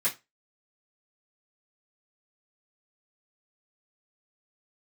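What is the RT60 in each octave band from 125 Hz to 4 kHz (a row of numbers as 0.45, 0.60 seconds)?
0.25, 0.20, 0.25, 0.20, 0.20, 0.20 seconds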